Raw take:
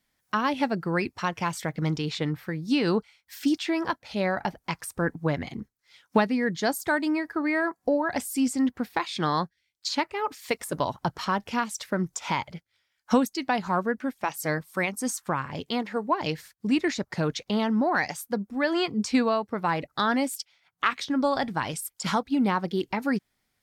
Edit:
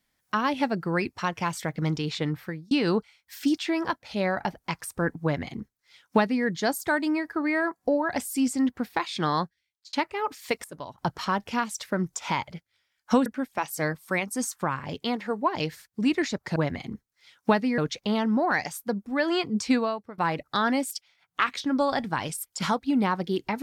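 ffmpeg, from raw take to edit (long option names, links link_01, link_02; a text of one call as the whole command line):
ffmpeg -i in.wav -filter_complex "[0:a]asplit=9[link_01][link_02][link_03][link_04][link_05][link_06][link_07][link_08][link_09];[link_01]atrim=end=2.71,asetpts=PTS-STARTPTS,afade=type=out:start_time=2.45:duration=0.26[link_10];[link_02]atrim=start=2.71:end=9.93,asetpts=PTS-STARTPTS,afade=type=in:duration=0.004:curve=hsin,afade=type=out:start_time=6.71:duration=0.51[link_11];[link_03]atrim=start=9.93:end=10.642,asetpts=PTS-STARTPTS,afade=type=in:duration=0.004:curve=hsin[link_12];[link_04]atrim=start=10.638:end=10.982,asetpts=PTS-STARTPTS,volume=-11.5dB[link_13];[link_05]atrim=start=10.978:end=13.262[link_14];[link_06]atrim=start=13.918:end=17.222[link_15];[link_07]atrim=start=5.228:end=6.452[link_16];[link_08]atrim=start=17.218:end=19.62,asetpts=PTS-STARTPTS,afade=type=out:start_time=1.942:duration=0.46:silence=0.133352[link_17];[link_09]atrim=start=19.62,asetpts=PTS-STARTPTS,afade=type=in:duration=0.004:curve=hsin:silence=0.133352[link_18];[link_10][link_11][link_12]concat=n=3:v=0:a=1[link_19];[link_19][link_13]acrossfade=duration=0.004:curve1=hsin:curve2=hsin[link_20];[link_20][link_14]acrossfade=duration=0.004:curve1=hsin:curve2=hsin[link_21];[link_21][link_15]acrossfade=duration=0.004:curve1=hsin:curve2=hsin[link_22];[link_22][link_16]acrossfade=duration=0.004:curve1=hsin:curve2=hsin[link_23];[link_17][link_18]concat=n=2:v=0:a=1[link_24];[link_23][link_24]acrossfade=duration=0.004:curve1=hsin:curve2=hsin" out.wav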